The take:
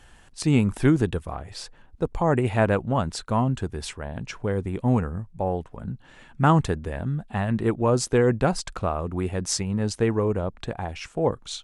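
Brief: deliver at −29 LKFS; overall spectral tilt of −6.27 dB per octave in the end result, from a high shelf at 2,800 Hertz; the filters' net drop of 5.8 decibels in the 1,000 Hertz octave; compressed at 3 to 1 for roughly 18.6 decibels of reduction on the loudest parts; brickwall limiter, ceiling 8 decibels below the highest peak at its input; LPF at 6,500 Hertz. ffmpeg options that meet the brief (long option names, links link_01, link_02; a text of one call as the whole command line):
ffmpeg -i in.wav -af "lowpass=6500,equalizer=frequency=1000:width_type=o:gain=-7,highshelf=frequency=2800:gain=-6.5,acompressor=threshold=-41dB:ratio=3,volume=14.5dB,alimiter=limit=-17.5dB:level=0:latency=1" out.wav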